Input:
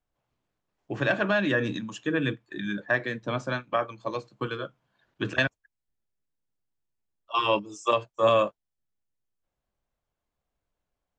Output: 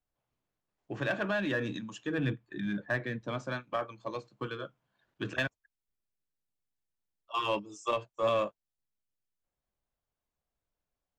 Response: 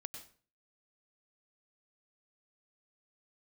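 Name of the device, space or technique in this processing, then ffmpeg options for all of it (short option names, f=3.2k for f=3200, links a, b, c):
parallel distortion: -filter_complex "[0:a]asettb=1/sr,asplit=3[a][b][c];[a]atrim=end=2.184[d];[b]atrim=start=2.18:end=3.21,asetpts=PTS-STARTPTS,afade=t=in:d=0.004:c=qsin,afade=t=out:st=1.026:d=0.004:c=qsin,bass=f=250:g=7,treble=f=4k:g=-6[e];[c]atrim=start=3.206[f];[d][e]acrossfade=d=0.004:c1=hsin:c2=qsin[g];[g][f]acrossfade=d=0.004:c1=qsin:c2=hsin,asplit=2[h][i];[i]asoftclip=type=hard:threshold=-24.5dB,volume=-6.5dB[j];[h][j]amix=inputs=2:normalize=0,volume=-9dB"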